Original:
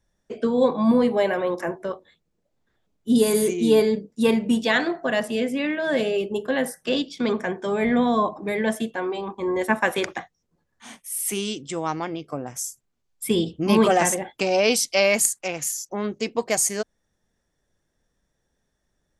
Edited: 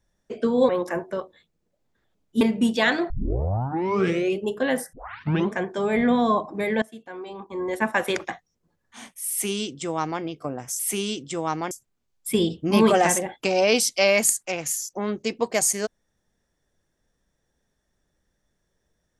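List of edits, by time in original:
0.69–1.41 cut
3.13–4.29 cut
4.98 tape start 1.29 s
6.81 tape start 0.59 s
8.7–10.09 fade in, from -20 dB
11.18–12.1 copy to 12.67

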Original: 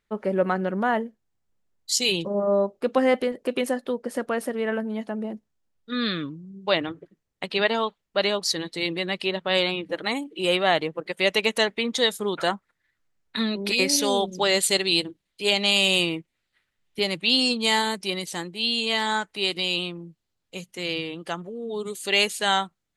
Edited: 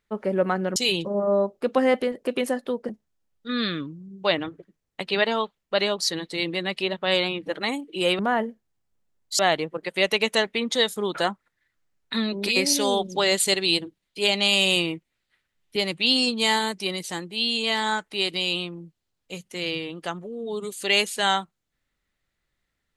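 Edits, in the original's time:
0.76–1.96 move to 10.62
4.09–5.32 cut

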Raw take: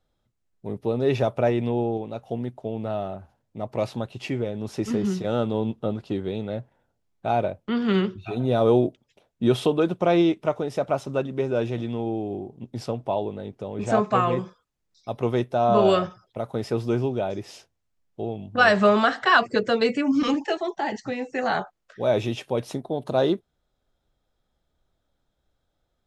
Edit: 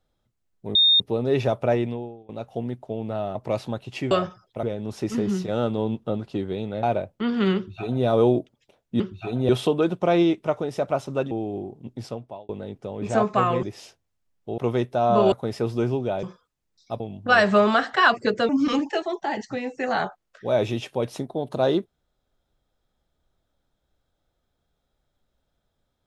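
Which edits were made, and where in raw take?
0.75 add tone 3670 Hz -13.5 dBFS 0.25 s
1.56–2.04 fade out quadratic, to -23.5 dB
3.1–3.63 cut
6.59–7.31 cut
8.04–8.53 copy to 9.48
11.3–12.08 cut
12.67–13.26 fade out
14.4–15.17 swap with 17.34–18.29
15.91–16.43 move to 4.39
19.78–20.04 cut

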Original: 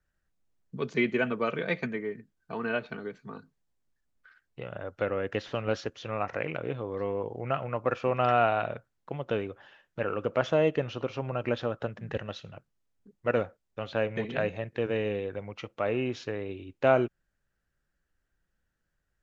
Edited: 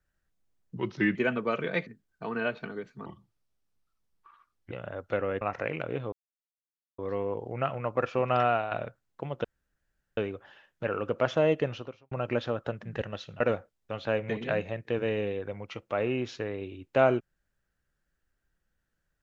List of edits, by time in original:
0.76–1.1 speed 86%
1.81–2.15 cut
3.34–4.6 speed 76%
5.3–6.16 cut
6.87 insert silence 0.86 s
8.28–8.6 fade out, to -9 dB
9.33 insert room tone 0.73 s
10.89–11.27 fade out quadratic
12.56–13.28 cut

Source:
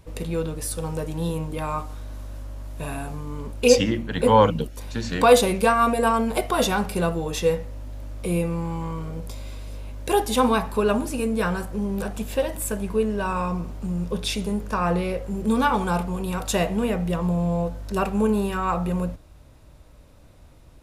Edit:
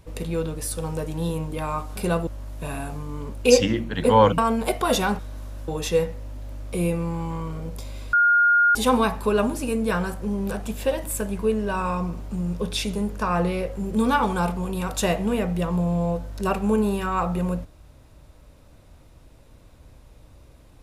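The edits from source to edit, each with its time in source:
1.96–2.45 swap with 6.88–7.19
4.56–6.07 cut
9.64–10.26 bleep 1420 Hz -14 dBFS

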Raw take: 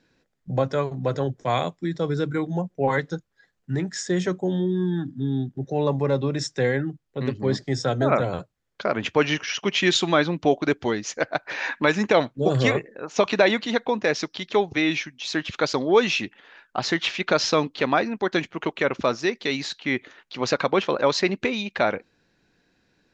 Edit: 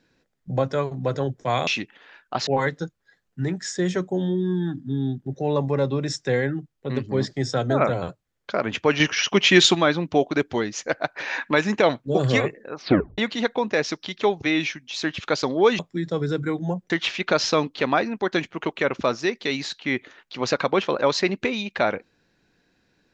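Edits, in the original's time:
1.67–2.78 swap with 16.1–16.9
9.31–10.06 gain +5.5 dB
13.06 tape stop 0.43 s

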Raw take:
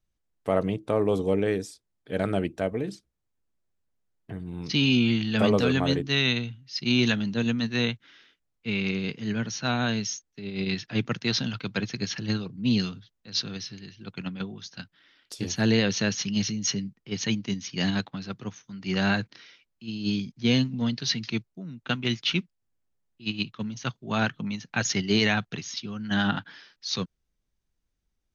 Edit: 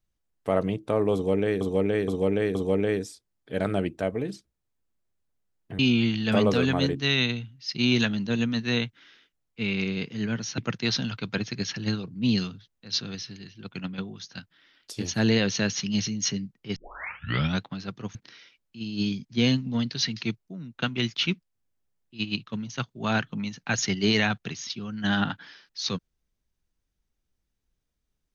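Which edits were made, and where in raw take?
1.14–1.61 loop, 4 plays
4.38–4.86 cut
9.65–11 cut
17.18 tape start 0.85 s
18.57–19.22 cut

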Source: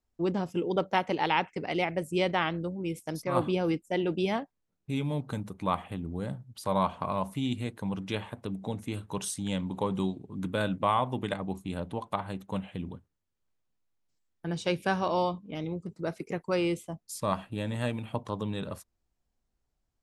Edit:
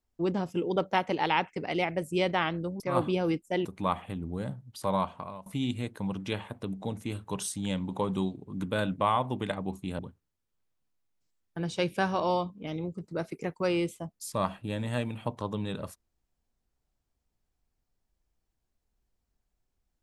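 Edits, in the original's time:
2.8–3.2 cut
4.05–5.47 cut
6.7–7.28 fade out, to -22 dB
11.81–12.87 cut

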